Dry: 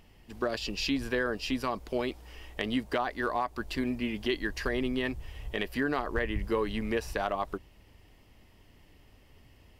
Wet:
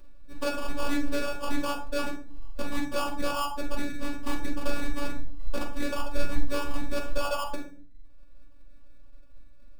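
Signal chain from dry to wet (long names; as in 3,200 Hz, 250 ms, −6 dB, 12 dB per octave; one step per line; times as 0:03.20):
reverb reduction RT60 0.96 s
low-pass that shuts in the quiet parts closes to 640 Hz, open at −30.5 dBFS
reverb reduction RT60 0.68 s
mains-hum notches 50/100/150/200/250/300/350/400 Hz
in parallel at −1.5 dB: brickwall limiter −25 dBFS, peak gain reduction 11 dB
on the sum: sample-rate reduction 2,000 Hz, jitter 0%
phases set to zero 287 Hz
convolution reverb RT60 0.45 s, pre-delay 4 ms, DRR −3 dB
highs frequency-modulated by the lows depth 0.12 ms
level −5.5 dB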